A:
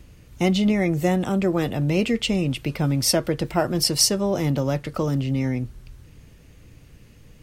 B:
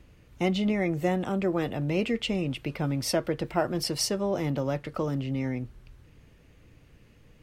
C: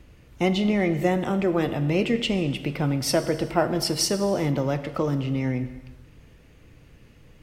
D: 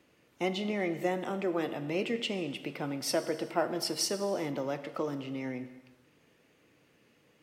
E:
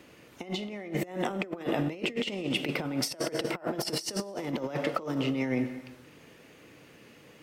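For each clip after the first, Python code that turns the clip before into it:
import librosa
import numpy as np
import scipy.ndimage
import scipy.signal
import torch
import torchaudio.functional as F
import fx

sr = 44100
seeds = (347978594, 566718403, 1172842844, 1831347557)

y1 = fx.bass_treble(x, sr, bass_db=-4, treble_db=-8)
y1 = F.gain(torch.from_numpy(y1), -4.0).numpy()
y2 = fx.rev_gated(y1, sr, seeds[0], gate_ms=450, shape='falling', drr_db=10.0)
y2 = F.gain(torch.from_numpy(y2), 4.0).numpy()
y3 = scipy.signal.sosfilt(scipy.signal.butter(2, 260.0, 'highpass', fs=sr, output='sos'), y2)
y3 = F.gain(torch.from_numpy(y3), -7.0).numpy()
y4 = fx.over_compress(y3, sr, threshold_db=-38.0, ratio=-0.5)
y4 = F.gain(torch.from_numpy(y4), 6.5).numpy()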